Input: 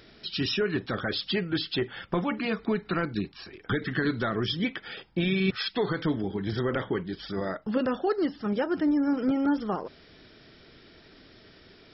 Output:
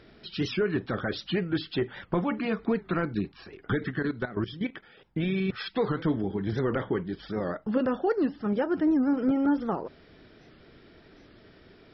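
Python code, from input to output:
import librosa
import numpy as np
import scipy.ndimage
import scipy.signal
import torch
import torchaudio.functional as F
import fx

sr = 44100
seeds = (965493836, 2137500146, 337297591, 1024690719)

y = fx.lowpass(x, sr, hz=1700.0, slope=6)
y = fx.level_steps(y, sr, step_db=14, at=(3.9, 5.49), fade=0.02)
y = fx.record_warp(y, sr, rpm=78.0, depth_cents=160.0)
y = y * librosa.db_to_amplitude(1.0)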